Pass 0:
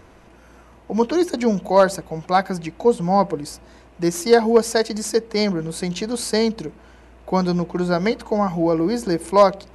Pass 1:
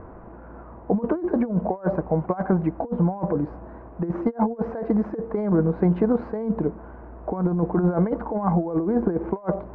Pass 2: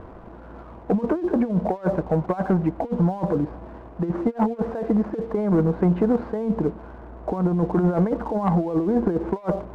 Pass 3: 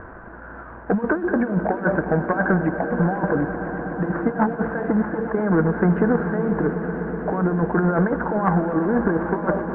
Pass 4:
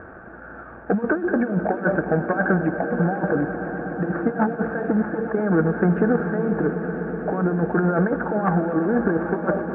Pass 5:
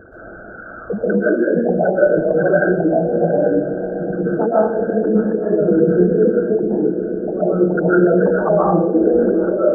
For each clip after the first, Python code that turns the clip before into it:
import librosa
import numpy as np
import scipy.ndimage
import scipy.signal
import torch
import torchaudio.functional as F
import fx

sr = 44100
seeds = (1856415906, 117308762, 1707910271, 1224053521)

y1 = scipy.signal.sosfilt(scipy.signal.butter(4, 1300.0, 'lowpass', fs=sr, output='sos'), x)
y1 = fx.over_compress(y1, sr, threshold_db=-23.0, ratio=-0.5)
y1 = y1 * librosa.db_to_amplitude(1.5)
y2 = fx.leveller(y1, sr, passes=1)
y2 = y2 * librosa.db_to_amplitude(-2.0)
y3 = fx.lowpass_res(y2, sr, hz=1600.0, q=7.0)
y3 = fx.echo_swell(y3, sr, ms=124, loudest=5, wet_db=-15)
y4 = fx.notch_comb(y3, sr, f0_hz=1000.0)
y5 = fx.envelope_sharpen(y4, sr, power=3.0)
y5 = fx.rev_freeverb(y5, sr, rt60_s=0.69, hf_ratio=0.45, predelay_ms=100, drr_db=-7.5)
y5 = y5 * librosa.db_to_amplitude(-2.0)